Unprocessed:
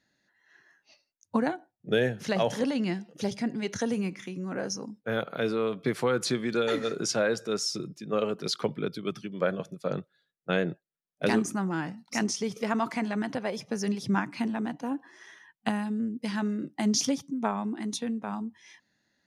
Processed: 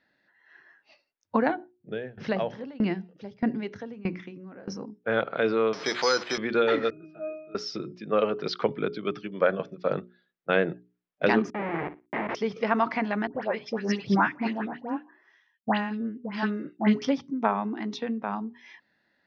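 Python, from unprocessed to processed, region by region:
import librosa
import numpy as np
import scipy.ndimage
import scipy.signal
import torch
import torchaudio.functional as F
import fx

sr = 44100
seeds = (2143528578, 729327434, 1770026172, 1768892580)

y = fx.chain(x, sr, fx.low_shelf(hz=260.0, db=10.0),
    fx.tremolo_decay(direction='decaying', hz=1.6, depth_db=23), at=(1.55, 5.03))
y = fx.chain(y, sr, fx.zero_step(step_db=-32.5),
    fx.highpass(hz=710.0, slope=6),
    fx.resample_bad(factor=8, down='filtered', up='zero_stuff'), at=(5.73, 6.38))
y = fx.chain(y, sr, fx.octave_resonator(note='D#', decay_s=0.64),
    fx.band_squash(depth_pct=40), at=(6.9, 7.55))
y = fx.chain(y, sr, fx.schmitt(flips_db=-30.5),
    fx.cabinet(low_hz=180.0, low_slope=12, high_hz=2400.0, hz=(240.0, 380.0, 880.0, 1400.0, 2100.0), db=(-4, 6, 3, -5, 6)),
    fx.room_flutter(wall_m=9.9, rt60_s=0.23), at=(11.5, 12.35))
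y = fx.chain(y, sr, fx.dispersion(late='highs', ms=98.0, hz=1400.0),
    fx.band_widen(depth_pct=100), at=(13.27, 17.02))
y = scipy.signal.sosfilt(scipy.signal.cheby1(4, 1.0, 5400.0, 'lowpass', fs=sr, output='sos'), y)
y = fx.bass_treble(y, sr, bass_db=-7, treble_db=-14)
y = fx.hum_notches(y, sr, base_hz=60, count=7)
y = y * librosa.db_to_amplitude(6.0)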